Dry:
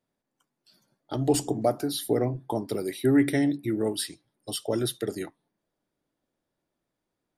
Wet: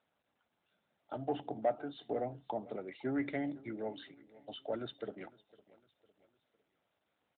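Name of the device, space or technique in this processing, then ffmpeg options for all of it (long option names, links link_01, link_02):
telephone: -filter_complex "[0:a]asettb=1/sr,asplit=3[link_01][link_02][link_03];[link_01]atrim=end=1.254[link_04];[link_02]atrim=start=1.25:end=2.56,asetpts=PTS-STARTPTS,afade=type=in:duration=0.004:curve=qsin,afade=type=out:start_time=1.306:duration=0.004:curve=qsin,equalizer=frequency=2500:width_type=o:width=0.21:gain=-4.5[link_05];[link_03]atrim=start=2.556[link_06];[link_04][link_05]acrossfade=duration=0.004:curve1=hsin:curve2=qsin[link_07];[link_07][link_06]acrossfade=duration=0.004:curve1=qsin:curve2=hsin,highpass=250,lowpass=3500,highshelf=frequency=3800:gain=-4,aecho=1:1:1.4:0.56,aecho=1:1:506|1012|1518:0.0841|0.0387|0.0178,asoftclip=type=tanh:threshold=-14dB,volume=-7.5dB" -ar 8000 -c:a libopencore_amrnb -b:a 12200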